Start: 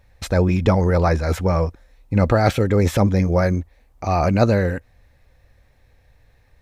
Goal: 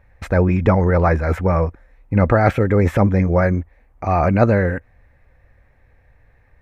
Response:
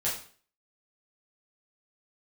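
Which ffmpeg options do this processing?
-af "highshelf=f=2.8k:t=q:w=1.5:g=-11,volume=1.5dB"

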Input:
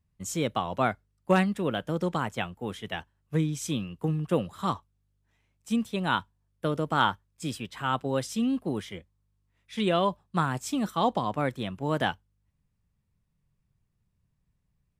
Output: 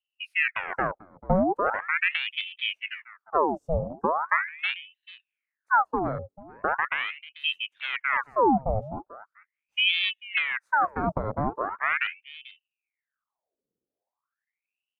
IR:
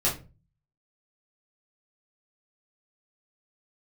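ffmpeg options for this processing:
-filter_complex "[0:a]acrossover=split=310[a][b];[b]acompressor=threshold=-31dB:ratio=5[c];[a][c]amix=inputs=2:normalize=0,firequalizer=gain_entry='entry(100,0);entry(250,8);entry(970,2);entry(1700,-25);entry(5600,-19)':delay=0.05:min_phase=1,afwtdn=0.0282,asplit=2[d][e];[e]aecho=0:1:441:0.112[f];[d][f]amix=inputs=2:normalize=0,aeval=exprs='val(0)*sin(2*PI*1600*n/s+1600*0.8/0.4*sin(2*PI*0.4*n/s))':c=same,volume=1.5dB"

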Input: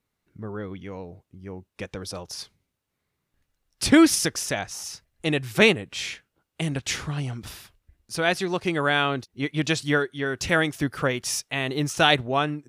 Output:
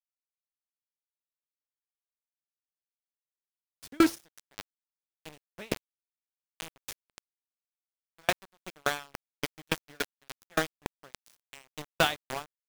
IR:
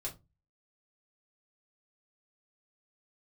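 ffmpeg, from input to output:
-af "bandreject=f=111.1:t=h:w=4,bandreject=f=222.2:t=h:w=4,bandreject=f=333.3:t=h:w=4,bandreject=f=444.4:t=h:w=4,bandreject=f=555.5:t=h:w=4,bandreject=f=666.6:t=h:w=4,bandreject=f=777.7:t=h:w=4,bandreject=f=888.8:t=h:w=4,bandreject=f=999.9:t=h:w=4,bandreject=f=1.111k:t=h:w=4,bandreject=f=1.2221k:t=h:w=4,bandreject=f=1.3332k:t=h:w=4,bandreject=f=1.4443k:t=h:w=4,bandreject=f=1.5554k:t=h:w=4,bandreject=f=1.6665k:t=h:w=4,bandreject=f=1.7776k:t=h:w=4,bandreject=f=1.8887k:t=h:w=4,bandreject=f=1.9998k:t=h:w=4,bandreject=f=2.1109k:t=h:w=4,bandreject=f=2.222k:t=h:w=4,bandreject=f=2.3331k:t=h:w=4,bandreject=f=2.4442k:t=h:w=4,bandreject=f=2.5553k:t=h:w=4,bandreject=f=2.6664k:t=h:w=4,bandreject=f=2.7775k:t=h:w=4,bandreject=f=2.8886k:t=h:w=4,bandreject=f=2.9997k:t=h:w=4,bandreject=f=3.1108k:t=h:w=4,bandreject=f=3.2219k:t=h:w=4,bandreject=f=3.333k:t=h:w=4,bandreject=f=3.4441k:t=h:w=4,bandreject=f=3.5552k:t=h:w=4,bandreject=f=3.6663k:t=h:w=4,bandreject=f=3.7774k:t=h:w=4,bandreject=f=3.8885k:t=h:w=4,bandreject=f=3.9996k:t=h:w=4,bandreject=f=4.1107k:t=h:w=4,aeval=exprs='val(0)*gte(abs(val(0)),0.112)':c=same,aeval=exprs='val(0)*pow(10,-40*if(lt(mod(3.5*n/s,1),2*abs(3.5)/1000),1-mod(3.5*n/s,1)/(2*abs(3.5)/1000),(mod(3.5*n/s,1)-2*abs(3.5)/1000)/(1-2*abs(3.5)/1000))/20)':c=same"

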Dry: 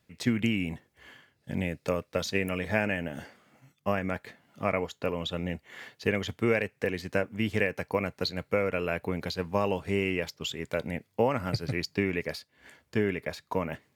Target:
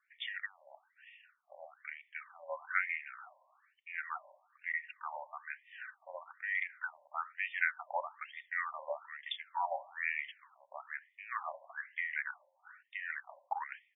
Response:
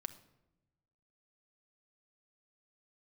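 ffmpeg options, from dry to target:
-filter_complex "[0:a]asetrate=38170,aresample=44100,atempo=1.15535,asplit=2[a][b];[1:a]atrim=start_sample=2205[c];[b][c]afir=irnorm=-1:irlink=0,volume=3dB[d];[a][d]amix=inputs=2:normalize=0,afftfilt=real='re*between(b*sr/1024,740*pow(2600/740,0.5+0.5*sin(2*PI*1.1*pts/sr))/1.41,740*pow(2600/740,0.5+0.5*sin(2*PI*1.1*pts/sr))*1.41)':imag='im*between(b*sr/1024,740*pow(2600/740,0.5+0.5*sin(2*PI*1.1*pts/sr))/1.41,740*pow(2600/740,0.5+0.5*sin(2*PI*1.1*pts/sr))*1.41)':win_size=1024:overlap=0.75,volume=-6dB"

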